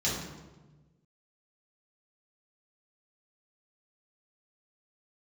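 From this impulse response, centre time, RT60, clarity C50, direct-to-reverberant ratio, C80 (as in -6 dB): 64 ms, 1.2 s, 1.5 dB, -8.0 dB, 4.5 dB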